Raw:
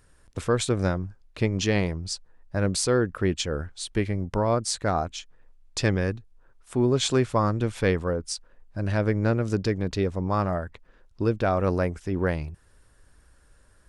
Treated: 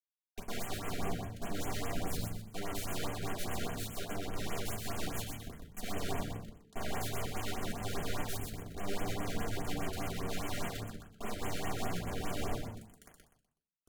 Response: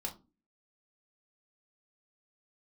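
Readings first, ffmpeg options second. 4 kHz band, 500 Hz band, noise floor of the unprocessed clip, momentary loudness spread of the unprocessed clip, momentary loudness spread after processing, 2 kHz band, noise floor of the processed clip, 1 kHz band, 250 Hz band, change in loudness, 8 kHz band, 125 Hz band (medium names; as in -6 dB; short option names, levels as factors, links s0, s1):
-9.5 dB, -15.5 dB, -59 dBFS, 11 LU, 6 LU, -10.0 dB, under -85 dBFS, -10.0 dB, -14.0 dB, -13.5 dB, -9.5 dB, -14.5 dB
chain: -filter_complex "[0:a]areverse,acompressor=threshold=0.0141:ratio=8,areverse,aeval=exprs='val(0)*sin(2*PI*98*n/s)':c=same,aeval=exprs='(mod(106*val(0)+1,2)-1)/106':c=same,acrusher=bits=5:dc=4:mix=0:aa=0.000001,asplit=5[s0][s1][s2][s3][s4];[s1]adelay=124,afreqshift=-110,volume=0.668[s5];[s2]adelay=248,afreqshift=-220,volume=0.207[s6];[s3]adelay=372,afreqshift=-330,volume=0.0646[s7];[s4]adelay=496,afreqshift=-440,volume=0.02[s8];[s0][s5][s6][s7][s8]amix=inputs=5:normalize=0[s9];[1:a]atrim=start_sample=2205,asetrate=36603,aresample=44100[s10];[s9][s10]afir=irnorm=-1:irlink=0,afftfilt=real='re*(1-between(b*sr/1024,870*pow(4800/870,0.5+0.5*sin(2*PI*4.9*pts/sr))/1.41,870*pow(4800/870,0.5+0.5*sin(2*PI*4.9*pts/sr))*1.41))':imag='im*(1-between(b*sr/1024,870*pow(4800/870,0.5+0.5*sin(2*PI*4.9*pts/sr))/1.41,870*pow(4800/870,0.5+0.5*sin(2*PI*4.9*pts/sr))*1.41))':win_size=1024:overlap=0.75,volume=2.66"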